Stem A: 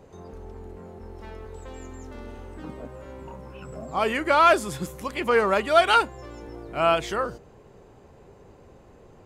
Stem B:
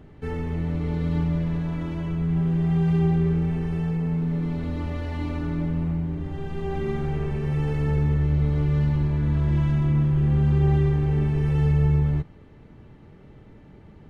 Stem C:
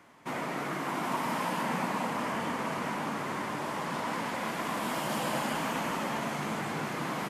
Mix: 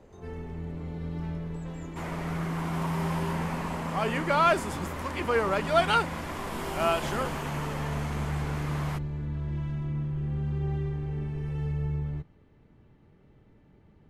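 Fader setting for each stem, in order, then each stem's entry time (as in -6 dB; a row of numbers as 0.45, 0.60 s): -5.5, -10.5, -3.5 dB; 0.00, 0.00, 1.70 s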